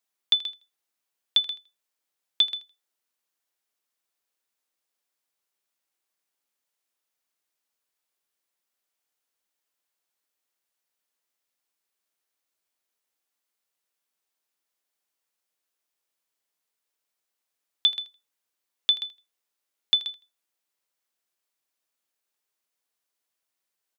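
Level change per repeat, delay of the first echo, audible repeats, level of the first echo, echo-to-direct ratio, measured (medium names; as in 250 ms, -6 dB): -14.5 dB, 81 ms, 2, -17.0 dB, -17.0 dB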